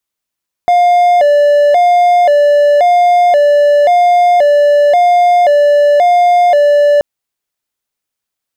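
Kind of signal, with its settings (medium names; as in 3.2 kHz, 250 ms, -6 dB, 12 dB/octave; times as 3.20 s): siren hi-lo 582–707 Hz 0.94 per s triangle -3 dBFS 6.33 s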